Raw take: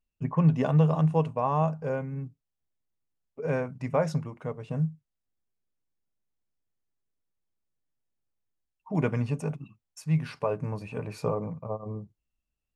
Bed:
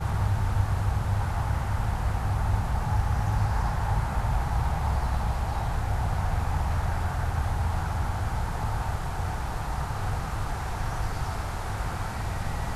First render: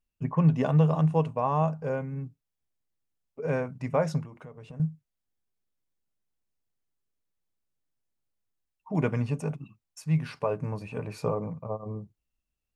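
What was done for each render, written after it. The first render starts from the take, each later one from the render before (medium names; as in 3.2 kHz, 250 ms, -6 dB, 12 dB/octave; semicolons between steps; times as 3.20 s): 4.25–4.80 s: compression 8:1, threshold -40 dBFS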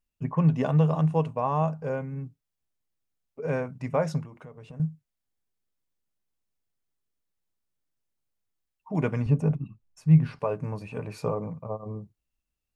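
9.26–10.39 s: tilt EQ -3 dB/octave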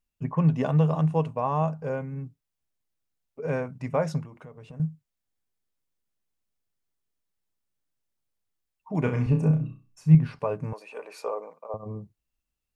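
9.02–10.15 s: flutter echo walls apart 5.5 m, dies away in 0.35 s; 10.73–11.74 s: high-pass 420 Hz 24 dB/octave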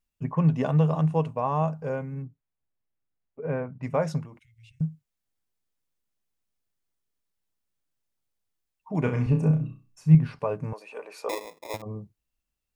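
2.22–3.83 s: distance through air 460 m; 4.39–4.81 s: Chebyshev band-stop 110–2100 Hz, order 5; 11.29–11.82 s: sample-rate reducer 1.5 kHz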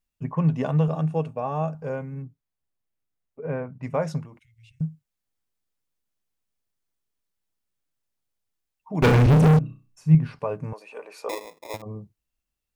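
0.88–1.75 s: comb of notches 1 kHz; 9.02–9.59 s: waveshaping leveller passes 5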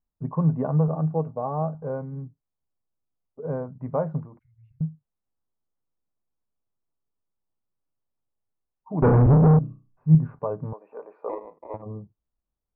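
low-pass 1.2 kHz 24 dB/octave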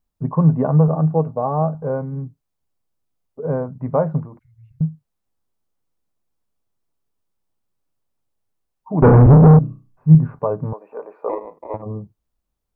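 trim +7.5 dB; peak limiter -1 dBFS, peak gain reduction 2.5 dB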